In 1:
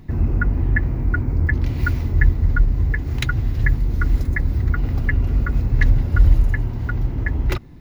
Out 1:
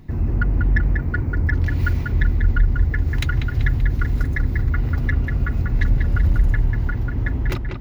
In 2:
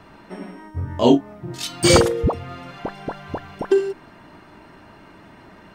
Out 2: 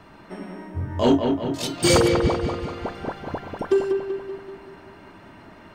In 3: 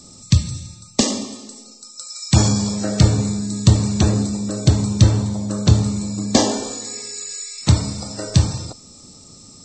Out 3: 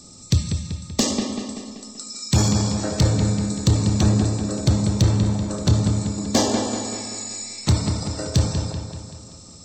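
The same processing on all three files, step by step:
soft clip -8 dBFS; dark delay 0.192 s, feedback 54%, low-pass 3400 Hz, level -5 dB; gain -1.5 dB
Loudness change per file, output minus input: -0.5, -3.0, -3.0 LU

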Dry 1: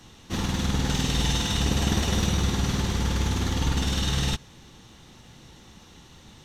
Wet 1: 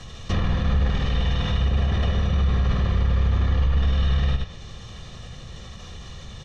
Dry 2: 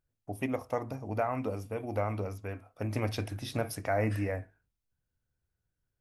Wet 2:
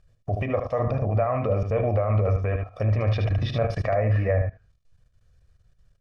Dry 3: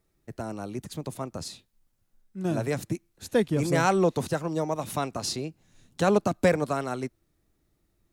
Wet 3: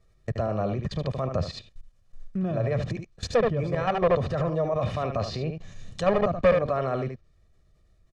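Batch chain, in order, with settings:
level quantiser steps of 21 dB; low shelf 88 Hz +7.5 dB; hard clip -26.5 dBFS; on a send: echo 75 ms -8.5 dB; on the sum: limiter -35 dBFS; treble ducked by the level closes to 2500 Hz, closed at -40 dBFS; LPF 6500 Hz 12 dB/oct; comb 1.7 ms, depth 62%; dynamic EQ 580 Hz, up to +4 dB, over -54 dBFS, Q 5.5; normalise peaks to -12 dBFS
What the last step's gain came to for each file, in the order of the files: +19.5, +17.5, +15.5 dB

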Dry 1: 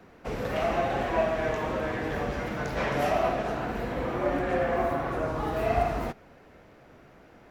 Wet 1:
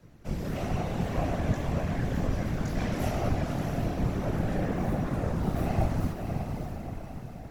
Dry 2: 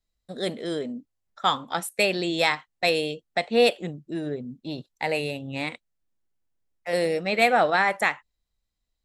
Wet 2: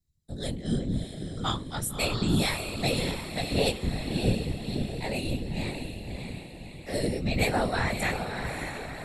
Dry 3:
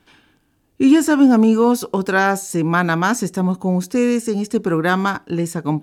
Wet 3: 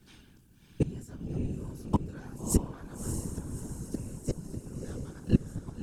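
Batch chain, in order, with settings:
octaver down 1 oct, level +3 dB; tone controls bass +11 dB, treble +12 dB; chorus 0.65 Hz, delay 17.5 ms, depth 7.1 ms; flipped gate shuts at -5 dBFS, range -29 dB; diffused feedback echo 0.613 s, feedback 51%, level -5.5 dB; whisperiser; gain -6.5 dB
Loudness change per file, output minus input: -2.0, -5.0, -17.5 LU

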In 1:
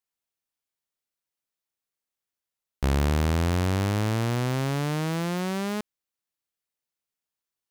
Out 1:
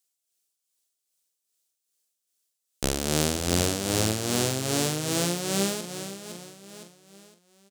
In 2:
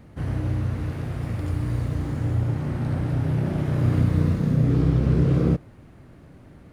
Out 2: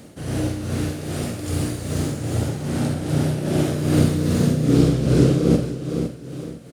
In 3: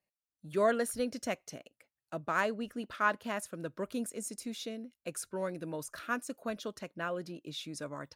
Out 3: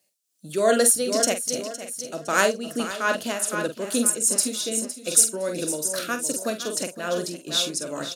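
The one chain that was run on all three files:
HPF 630 Hz 6 dB/oct; doubler 46 ms -7.5 dB; on a send: feedback echo 0.511 s, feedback 40%, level -10 dB; on the sum: tremolo 2.5 Hz, depth 56%; graphic EQ 1000/2000/8000 Hz -11/-8/+6 dB; normalise peaks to -2 dBFS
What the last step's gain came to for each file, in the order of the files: +11.0, +16.0, +20.0 dB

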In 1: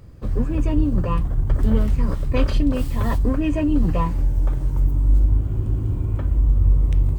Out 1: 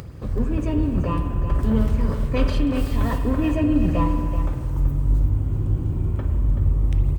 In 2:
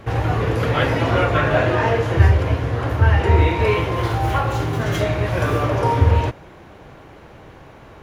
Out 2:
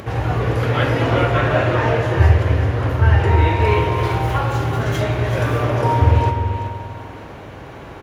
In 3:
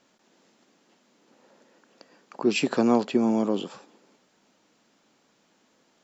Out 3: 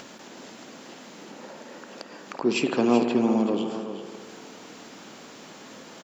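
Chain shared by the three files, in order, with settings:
upward compressor, threshold -27 dBFS; HPF 45 Hz; echo 0.38 s -9.5 dB; spring tank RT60 2.2 s, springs 50 ms, chirp 50 ms, DRR 6 dB; gain -1 dB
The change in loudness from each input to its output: -1.0, +1.0, 0.0 LU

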